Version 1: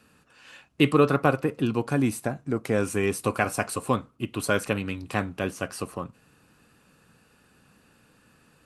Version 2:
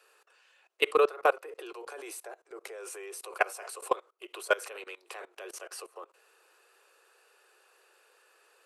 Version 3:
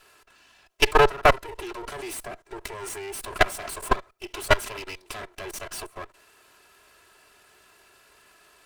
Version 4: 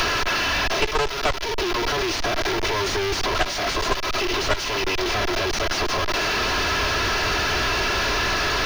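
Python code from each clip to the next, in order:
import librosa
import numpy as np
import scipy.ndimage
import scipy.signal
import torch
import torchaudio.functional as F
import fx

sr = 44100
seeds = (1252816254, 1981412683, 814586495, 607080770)

y1 = scipy.signal.sosfilt(scipy.signal.butter(16, 360.0, 'highpass', fs=sr, output='sos'), x)
y1 = fx.level_steps(y1, sr, step_db=22)
y1 = F.gain(torch.from_numpy(y1), 1.5).numpy()
y2 = fx.lower_of_two(y1, sr, delay_ms=3.0)
y2 = F.gain(torch.from_numpy(y2), 9.0).numpy()
y3 = fx.delta_mod(y2, sr, bps=32000, step_db=-24.0)
y3 = fx.leveller(y3, sr, passes=3)
y3 = fx.band_squash(y3, sr, depth_pct=100)
y3 = F.gain(torch.from_numpy(y3), -5.0).numpy()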